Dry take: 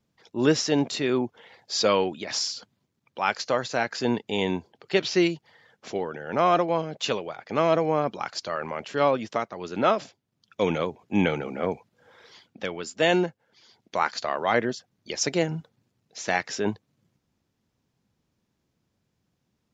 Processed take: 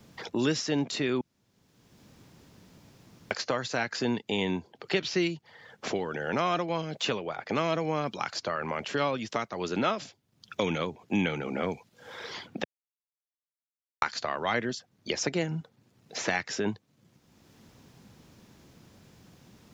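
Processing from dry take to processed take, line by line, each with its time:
0:01.21–0:03.31: fill with room tone
0:12.64–0:14.02: silence
whole clip: dynamic equaliser 600 Hz, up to −6 dB, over −33 dBFS, Q 0.71; multiband upward and downward compressor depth 70%; level −1 dB

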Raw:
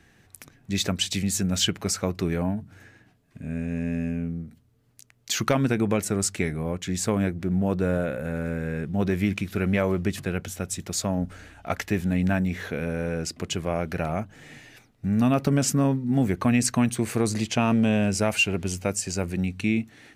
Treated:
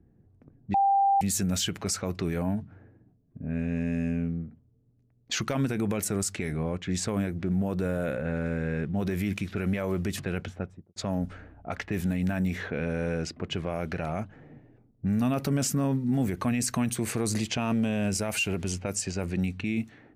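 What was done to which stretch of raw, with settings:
0:00.74–0:01.21: beep over 791 Hz −15.5 dBFS
0:10.48–0:10.96: fade out and dull
whole clip: low-pass that shuts in the quiet parts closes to 340 Hz, open at −21.5 dBFS; high-shelf EQ 11,000 Hz +9.5 dB; brickwall limiter −19 dBFS

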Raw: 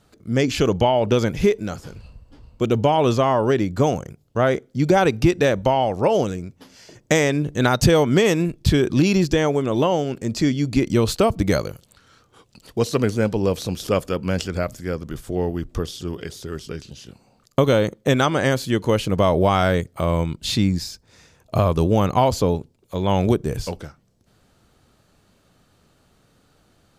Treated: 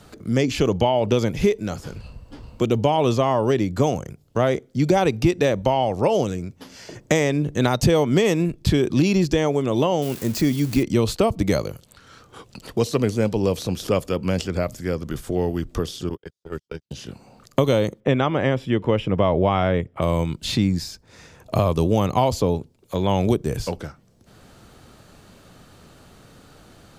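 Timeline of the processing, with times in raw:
0:10.02–0:10.83: spike at every zero crossing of −22 dBFS
0:16.09–0:16.91: noise gate −29 dBFS, range −56 dB
0:18.00–0:20.02: Savitzky-Golay smoothing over 25 samples
whole clip: dynamic equaliser 1,500 Hz, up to −6 dB, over −40 dBFS, Q 3; multiband upward and downward compressor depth 40%; level −1 dB

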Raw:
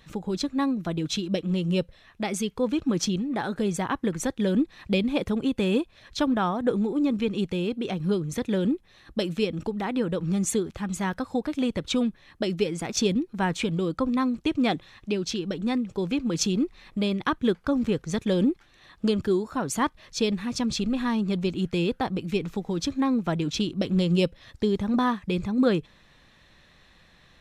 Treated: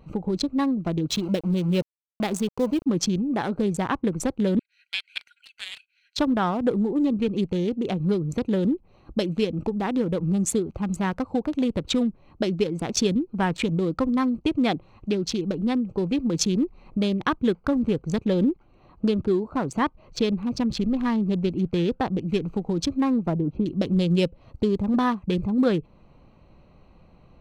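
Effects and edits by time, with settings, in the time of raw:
0:01.09–0:02.86: centre clipping without the shift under −35 dBFS
0:04.59–0:06.18: linear-phase brick-wall high-pass 1,400 Hz
0:18.19–0:22.30: high-shelf EQ 7,200 Hz −11 dB
0:23.26–0:23.66: low-pass filter 1,000 Hz
whole clip: adaptive Wiener filter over 25 samples; downward compressor 1.5 to 1, threshold −35 dBFS; level +7 dB

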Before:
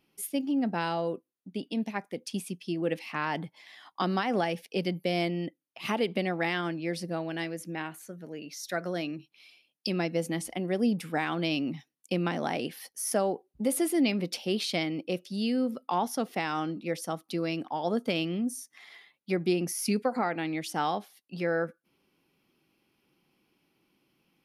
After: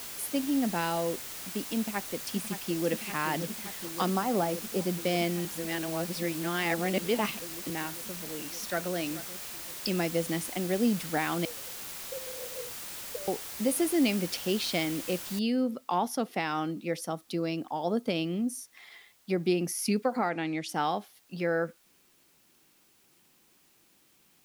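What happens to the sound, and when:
0:01.77–0:02.90: delay throw 570 ms, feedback 85%, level −10 dB
0:04.10–0:04.92: flat-topped bell 2,800 Hz −11 dB
0:05.45–0:07.70: reverse
0:08.39–0:08.93: delay throw 430 ms, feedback 15%, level −15.5 dB
0:11.45–0:13.28: flat-topped band-pass 500 Hz, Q 7.9
0:15.39: noise floor change −41 dB −65 dB
0:17.07–0:19.39: dynamic equaliser 2,100 Hz, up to −4 dB, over −44 dBFS, Q 0.9
0:20.29–0:20.69: low-pass filter 8,000 Hz

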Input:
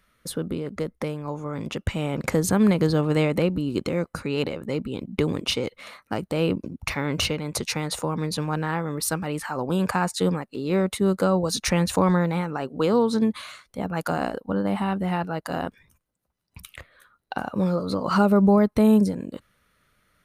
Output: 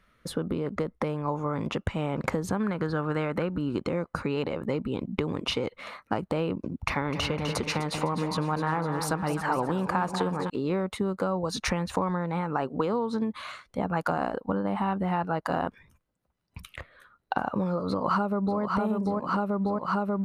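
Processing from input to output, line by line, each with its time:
0:02.60–0:03.77: parametric band 1,500 Hz +11.5 dB 0.56 octaves
0:06.72–0:10.50: echo with a time of its own for lows and highs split 830 Hz, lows 185 ms, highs 253 ms, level −9 dB
0:17.87–0:18.60: delay throw 590 ms, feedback 75%, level −1 dB
whole clip: low-pass filter 2,800 Hz 6 dB per octave; downward compressor 12 to 1, threshold −27 dBFS; dynamic equaliser 1,000 Hz, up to +6 dB, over −49 dBFS, Q 1.3; level +2 dB

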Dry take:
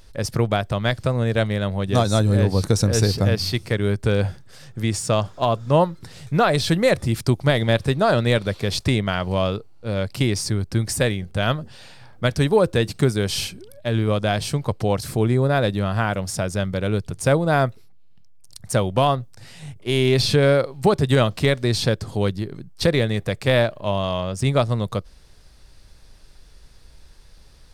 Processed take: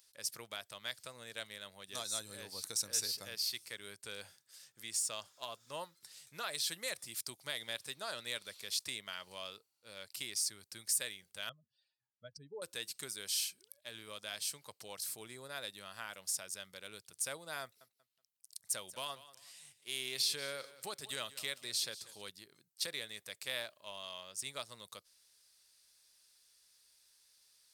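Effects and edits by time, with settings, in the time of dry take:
0:11.49–0:12.62: expanding power law on the bin magnitudes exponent 2.3
0:17.62–0:22.22: repeating echo 187 ms, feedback 29%, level −16.5 dB
whole clip: first difference; notch filter 730 Hz, Q 16; level −6 dB

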